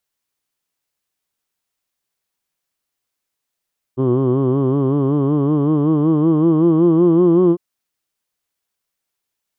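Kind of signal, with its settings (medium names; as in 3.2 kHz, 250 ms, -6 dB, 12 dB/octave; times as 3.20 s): formant vowel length 3.60 s, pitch 126 Hz, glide +6 st, F1 350 Hz, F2 1.1 kHz, F3 3.1 kHz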